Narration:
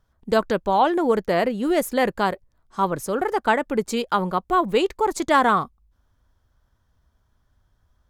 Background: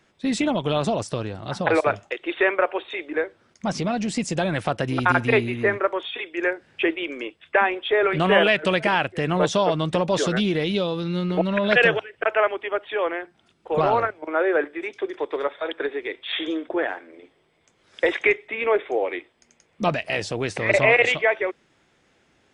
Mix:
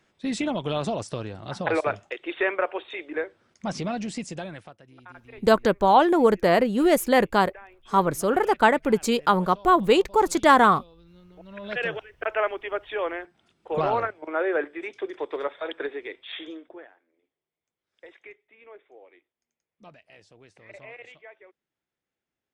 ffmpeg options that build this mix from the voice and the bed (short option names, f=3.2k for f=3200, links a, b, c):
-filter_complex "[0:a]adelay=5150,volume=1.5dB[a];[1:a]volume=19dB,afade=t=out:st=3.93:d=0.82:silence=0.0707946,afade=t=in:st=11.4:d=1.11:silence=0.0668344,afade=t=out:st=15.78:d=1.12:silence=0.0707946[b];[a][b]amix=inputs=2:normalize=0"